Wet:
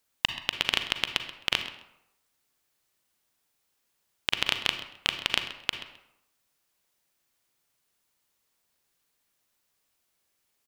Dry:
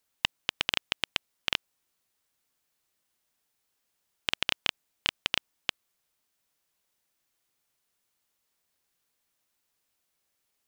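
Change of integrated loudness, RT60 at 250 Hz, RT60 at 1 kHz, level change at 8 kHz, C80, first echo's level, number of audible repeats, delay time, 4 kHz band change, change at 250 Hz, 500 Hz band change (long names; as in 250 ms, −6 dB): +2.5 dB, 0.80 s, 0.85 s, +2.5 dB, 11.0 dB, −16.0 dB, 1, 131 ms, +2.5 dB, +3.0 dB, +2.5 dB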